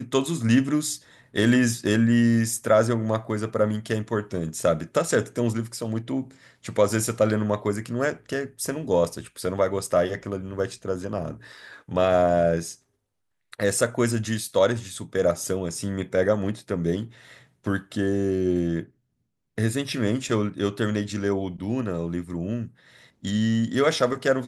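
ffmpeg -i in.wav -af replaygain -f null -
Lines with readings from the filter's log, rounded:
track_gain = +4.1 dB
track_peak = 0.323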